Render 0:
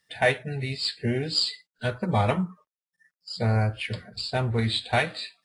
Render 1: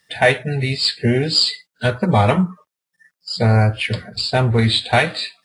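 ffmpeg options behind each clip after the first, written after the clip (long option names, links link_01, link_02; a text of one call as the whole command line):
ffmpeg -i in.wav -filter_complex "[0:a]highpass=49,asplit=2[link_01][link_02];[link_02]alimiter=limit=-17.5dB:level=0:latency=1,volume=-2dB[link_03];[link_01][link_03]amix=inputs=2:normalize=0,volume=5dB" out.wav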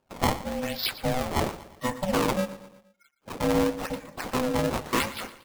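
ffmpeg -i in.wav -af "acrusher=samples=23:mix=1:aa=0.000001:lfo=1:lforange=36.8:lforate=0.93,aecho=1:1:118|236|354|472:0.158|0.0777|0.0381|0.0186,aeval=exprs='val(0)*sin(2*PI*380*n/s)':channel_layout=same,volume=-7.5dB" out.wav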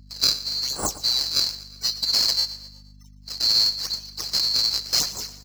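ffmpeg -i in.wav -filter_complex "[0:a]afftfilt=real='real(if(lt(b,736),b+184*(1-2*mod(floor(b/184),2)),b),0)':imag='imag(if(lt(b,736),b+184*(1-2*mod(floor(b/184),2)),b),0)':win_size=2048:overlap=0.75,aeval=exprs='val(0)+0.00316*(sin(2*PI*50*n/s)+sin(2*PI*2*50*n/s)/2+sin(2*PI*3*50*n/s)/3+sin(2*PI*4*50*n/s)/4+sin(2*PI*5*50*n/s)/5)':channel_layout=same,asplit=2[link_01][link_02];[link_02]adelay=367.3,volume=-25dB,highshelf=frequency=4000:gain=-8.27[link_03];[link_01][link_03]amix=inputs=2:normalize=0,volume=3.5dB" out.wav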